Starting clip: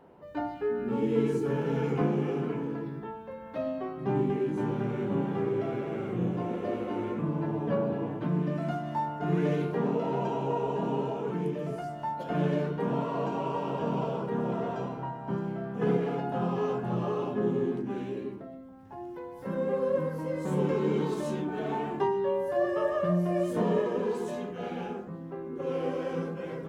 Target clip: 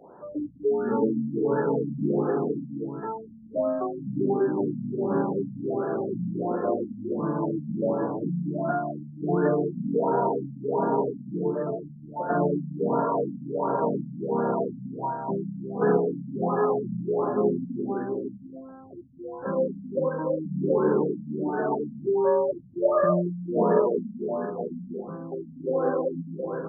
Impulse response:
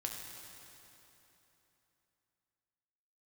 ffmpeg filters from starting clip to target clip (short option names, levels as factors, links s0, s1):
-filter_complex "[0:a]aemphasis=mode=production:type=bsi,acrossover=split=130[s0][s1];[s0]acompressor=threshold=0.00141:ratio=16[s2];[s2][s1]amix=inputs=2:normalize=0,equalizer=f=5000:w=0.55:g=3.5,afftfilt=real='re*lt(b*sr/1024,250*pow(1800/250,0.5+0.5*sin(2*PI*1.4*pts/sr)))':imag='im*lt(b*sr/1024,250*pow(1800/250,0.5+0.5*sin(2*PI*1.4*pts/sr)))':win_size=1024:overlap=0.75,volume=2.66"